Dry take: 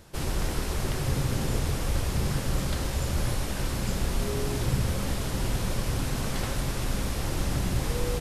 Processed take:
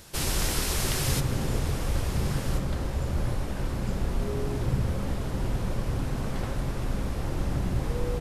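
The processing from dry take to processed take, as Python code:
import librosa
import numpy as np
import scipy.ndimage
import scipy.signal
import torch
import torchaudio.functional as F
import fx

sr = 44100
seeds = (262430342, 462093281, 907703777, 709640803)

y = fx.high_shelf(x, sr, hz=2100.0, db=fx.steps((0.0, 9.5), (1.19, -3.0), (2.57, -11.0)))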